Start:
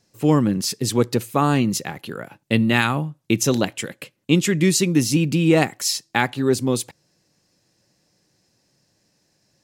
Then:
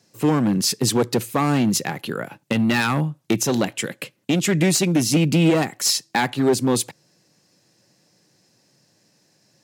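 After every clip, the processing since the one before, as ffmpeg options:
ffmpeg -i in.wav -af "aeval=exprs='clip(val(0),-1,0.15)':channel_layout=same,highpass=frequency=110:width=0.5412,highpass=frequency=110:width=1.3066,alimiter=limit=-13dB:level=0:latency=1:release=382,volume=4.5dB" out.wav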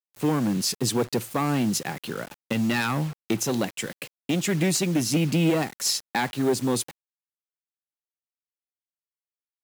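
ffmpeg -i in.wav -af "acrusher=bits=5:mix=0:aa=0.000001,volume=-5dB" out.wav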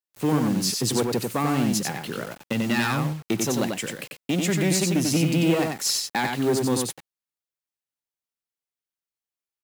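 ffmpeg -i in.wav -af "aecho=1:1:92:0.631" out.wav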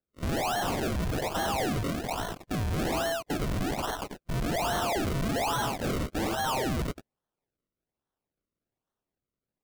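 ffmpeg -i in.wav -af "afftfilt=real='real(if(lt(b,1008),b+24*(1-2*mod(floor(b/24),2)),b),0)':imag='imag(if(lt(b,1008),b+24*(1-2*mod(floor(b/24),2)),b),0)':win_size=2048:overlap=0.75,acrusher=samples=36:mix=1:aa=0.000001:lfo=1:lforange=36:lforate=1.2,volume=29.5dB,asoftclip=hard,volume=-29.5dB,volume=2dB" out.wav

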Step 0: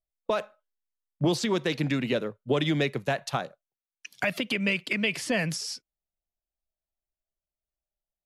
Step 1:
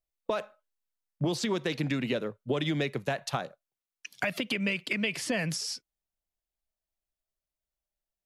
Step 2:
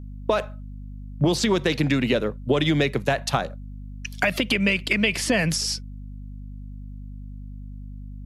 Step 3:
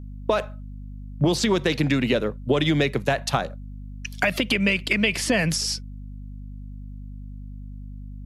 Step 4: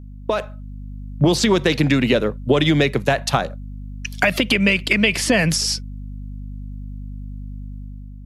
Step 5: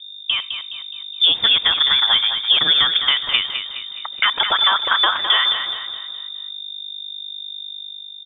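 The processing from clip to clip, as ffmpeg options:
ffmpeg -i in.wav -af "acompressor=threshold=-27dB:ratio=2.5" out.wav
ffmpeg -i in.wav -af "aeval=exprs='val(0)+0.00631*(sin(2*PI*50*n/s)+sin(2*PI*2*50*n/s)/2+sin(2*PI*3*50*n/s)/3+sin(2*PI*4*50*n/s)/4+sin(2*PI*5*50*n/s)/5)':channel_layout=same,volume=8.5dB" out.wav
ffmpeg -i in.wav -af anull out.wav
ffmpeg -i in.wav -af "dynaudnorm=framelen=230:gausssize=5:maxgain=5.5dB" out.wav
ffmpeg -i in.wav -af "aecho=1:1:209|418|627|836|1045:0.398|0.183|0.0842|0.0388|0.0178,lowpass=frequency=3100:width_type=q:width=0.5098,lowpass=frequency=3100:width_type=q:width=0.6013,lowpass=frequency=3100:width_type=q:width=0.9,lowpass=frequency=3100:width_type=q:width=2.563,afreqshift=-3700" out.wav

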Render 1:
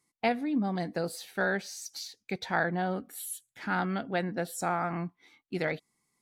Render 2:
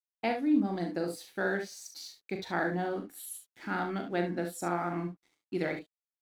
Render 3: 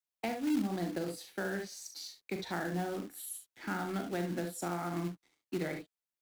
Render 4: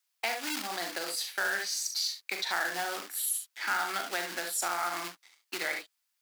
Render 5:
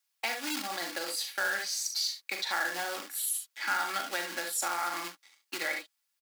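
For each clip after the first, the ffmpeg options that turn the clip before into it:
ffmpeg -i in.wav -af "equalizer=frequency=330:width=3.3:gain=10,aeval=exprs='sgn(val(0))*max(abs(val(0))-0.00158,0)':channel_layout=same,aecho=1:1:40|63|73:0.447|0.282|0.266,volume=-4.5dB" out.wav
ffmpeg -i in.wav -filter_complex "[0:a]acrossover=split=220[link_01][link_02];[link_02]acompressor=threshold=-35dB:ratio=4[link_03];[link_01][link_03]amix=inputs=2:normalize=0,acrossover=split=150|1800[link_04][link_05][link_06];[link_05]acrusher=bits=3:mode=log:mix=0:aa=0.000001[link_07];[link_04][link_07][link_06]amix=inputs=3:normalize=0" out.wav
ffmpeg -i in.wav -filter_complex "[0:a]highpass=1100,equalizer=frequency=4800:width=5.2:gain=3.5,asplit=2[link_01][link_02];[link_02]alimiter=level_in=12.5dB:limit=-24dB:level=0:latency=1:release=124,volume=-12.5dB,volume=0.5dB[link_03];[link_01][link_03]amix=inputs=2:normalize=0,volume=7.5dB" out.wav
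ffmpeg -i in.wav -af "aecho=1:1:3.6:0.42,volume=-1dB" out.wav

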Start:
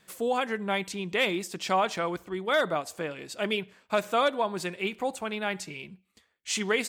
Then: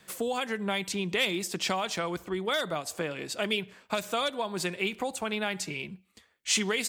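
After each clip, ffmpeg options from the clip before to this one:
ffmpeg -i in.wav -filter_complex "[0:a]acrossover=split=130|3000[link_01][link_02][link_03];[link_02]acompressor=threshold=-33dB:ratio=6[link_04];[link_01][link_04][link_03]amix=inputs=3:normalize=0,volume=4.5dB" out.wav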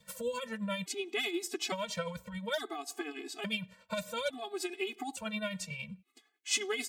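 ffmpeg -i in.wav -af "adynamicequalizer=threshold=0.00316:dfrequency=1500:dqfactor=3.2:tfrequency=1500:tqfactor=3.2:attack=5:release=100:ratio=0.375:range=2:mode=cutabove:tftype=bell,tremolo=f=11:d=0.54,afftfilt=real='re*gt(sin(2*PI*0.58*pts/sr)*(1-2*mod(floor(b*sr/1024/220),2)),0)':imag='im*gt(sin(2*PI*0.58*pts/sr)*(1-2*mod(floor(b*sr/1024/220),2)),0)':win_size=1024:overlap=0.75" out.wav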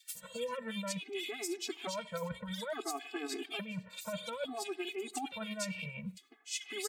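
ffmpeg -i in.wav -filter_complex "[0:a]lowshelf=frequency=84:gain=-9.5,areverse,acompressor=threshold=-42dB:ratio=6,areverse,acrossover=split=2200[link_01][link_02];[link_01]adelay=150[link_03];[link_03][link_02]amix=inputs=2:normalize=0,volume=6.5dB" out.wav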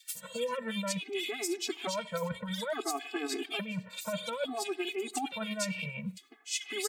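ffmpeg -i in.wav -af "highpass=91,volume=4.5dB" out.wav

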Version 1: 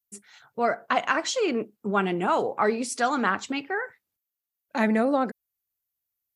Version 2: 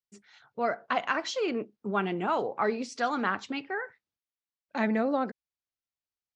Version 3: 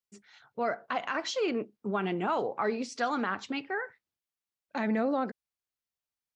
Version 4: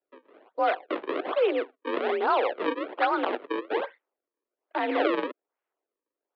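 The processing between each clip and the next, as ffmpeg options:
ffmpeg -i in.wav -af "lowpass=frequency=5800:width=0.5412,lowpass=frequency=5800:width=1.3066,volume=-4.5dB" out.wav
ffmpeg -i in.wav -af "alimiter=limit=-19.5dB:level=0:latency=1:release=54" out.wav
ffmpeg -i in.wav -af "acrusher=samples=37:mix=1:aa=0.000001:lfo=1:lforange=59.2:lforate=1.2,adynamicsmooth=sensitivity=1.5:basefreq=2700,highpass=frequency=290:width_type=q:width=0.5412,highpass=frequency=290:width_type=q:width=1.307,lowpass=frequency=3600:width_type=q:width=0.5176,lowpass=frequency=3600:width_type=q:width=0.7071,lowpass=frequency=3600:width_type=q:width=1.932,afreqshift=53,volume=7dB" out.wav

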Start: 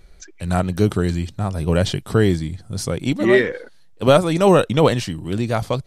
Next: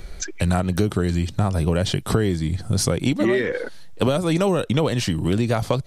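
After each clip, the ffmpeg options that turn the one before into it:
ffmpeg -i in.wav -filter_complex "[0:a]acrossover=split=420|3000[link_01][link_02][link_03];[link_02]acompressor=threshold=-17dB:ratio=6[link_04];[link_01][link_04][link_03]amix=inputs=3:normalize=0,asplit=2[link_05][link_06];[link_06]alimiter=limit=-11dB:level=0:latency=1:release=249,volume=3dB[link_07];[link_05][link_07]amix=inputs=2:normalize=0,acompressor=threshold=-22dB:ratio=5,volume=4dB" out.wav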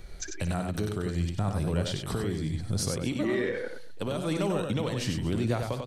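ffmpeg -i in.wav -filter_complex "[0:a]alimiter=limit=-11dB:level=0:latency=1:release=292,asplit=2[link_01][link_02];[link_02]aecho=0:1:59|95|230:0.251|0.562|0.126[link_03];[link_01][link_03]amix=inputs=2:normalize=0,volume=-8.5dB" out.wav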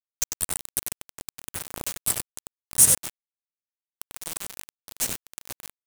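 ffmpeg -i in.wav -filter_complex "[0:a]acrossover=split=270[link_01][link_02];[link_02]asoftclip=type=tanh:threshold=-26.5dB[link_03];[link_01][link_03]amix=inputs=2:normalize=0,aexciter=amount=13.1:drive=7.5:freq=6700,aeval=exprs='val(0)*gte(abs(val(0)),0.119)':channel_layout=same" out.wav

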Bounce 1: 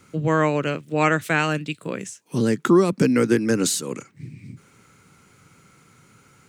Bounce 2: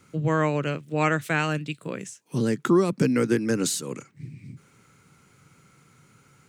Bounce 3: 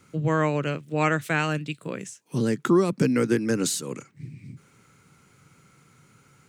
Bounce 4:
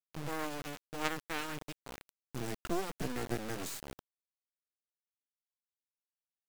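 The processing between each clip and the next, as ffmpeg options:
ffmpeg -i in.wav -af "equalizer=frequency=140:width_type=o:width=0.33:gain=4.5,volume=-4dB" out.wav
ffmpeg -i in.wav -af anull out.wav
ffmpeg -i in.wav -af "aeval=exprs='0.447*(cos(1*acos(clip(val(0)/0.447,-1,1)))-cos(1*PI/2))+0.126*(cos(3*acos(clip(val(0)/0.447,-1,1)))-cos(3*PI/2))+0.0251*(cos(5*acos(clip(val(0)/0.447,-1,1)))-cos(5*PI/2))':channel_layout=same,acrusher=bits=3:dc=4:mix=0:aa=0.000001,volume=-5dB" out.wav

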